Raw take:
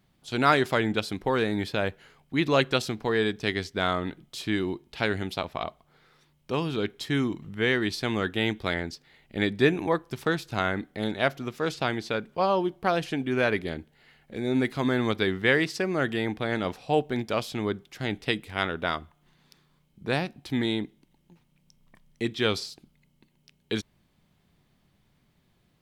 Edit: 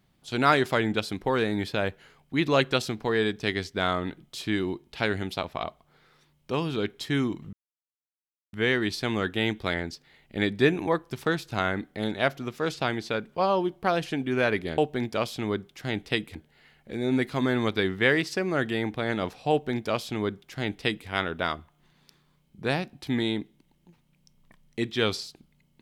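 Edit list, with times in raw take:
7.53 s: insert silence 1.00 s
16.94–18.51 s: copy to 13.78 s

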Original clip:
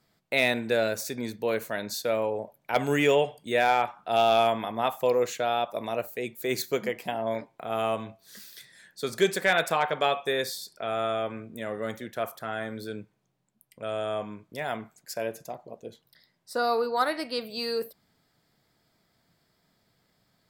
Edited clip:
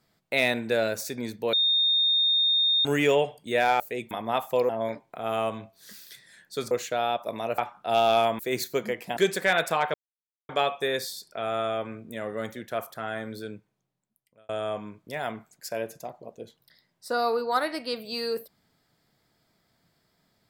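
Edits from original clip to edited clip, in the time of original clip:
1.53–2.85 s: bleep 3.67 kHz -19.5 dBFS
3.80–4.61 s: swap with 6.06–6.37 s
7.15–9.17 s: move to 5.19 s
9.94 s: insert silence 0.55 s
12.78–13.94 s: fade out

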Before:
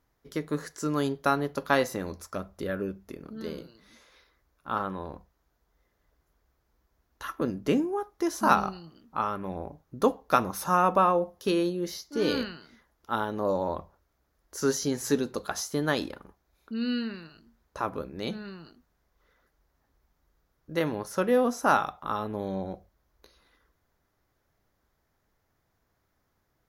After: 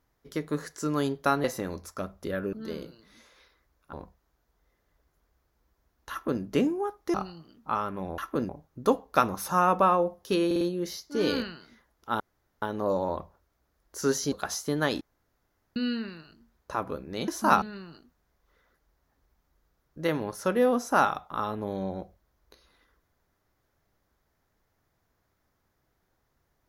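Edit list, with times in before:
1.44–1.80 s: delete
2.89–3.29 s: delete
4.69–5.06 s: delete
7.24–7.55 s: copy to 9.65 s
8.27–8.61 s: move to 18.34 s
11.62 s: stutter 0.05 s, 4 plays
13.21 s: insert room tone 0.42 s
14.91–15.38 s: delete
16.07–16.82 s: room tone

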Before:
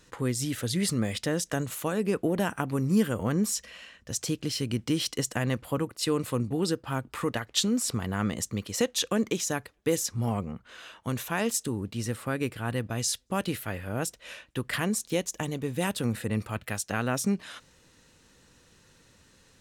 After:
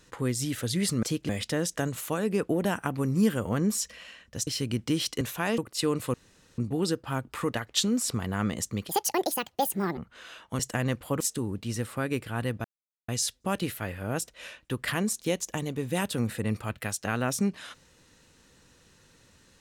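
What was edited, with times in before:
4.21–4.47 s: move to 1.03 s
5.21–5.82 s: swap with 11.13–11.50 s
6.38 s: insert room tone 0.44 s
8.69–10.51 s: speed 168%
12.94 s: insert silence 0.44 s

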